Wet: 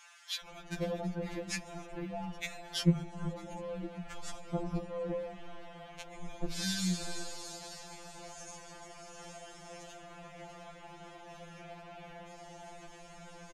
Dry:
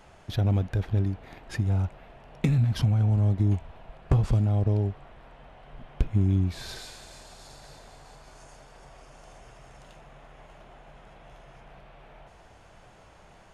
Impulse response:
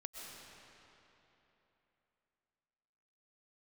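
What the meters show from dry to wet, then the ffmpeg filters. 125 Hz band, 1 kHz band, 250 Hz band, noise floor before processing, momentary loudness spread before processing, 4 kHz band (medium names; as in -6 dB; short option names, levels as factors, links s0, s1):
-16.0 dB, -2.0 dB, -6.0 dB, -53 dBFS, 15 LU, +3.5 dB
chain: -filter_complex "[0:a]equalizer=f=6600:w=2:g=6,acompressor=threshold=0.0398:ratio=2.5,acrossover=split=1200[s0][s1];[s0]adelay=440[s2];[s2][s1]amix=inputs=2:normalize=0,afftfilt=real='re*2.83*eq(mod(b,8),0)':imag='im*2.83*eq(mod(b,8),0)':win_size=2048:overlap=0.75,volume=1.88"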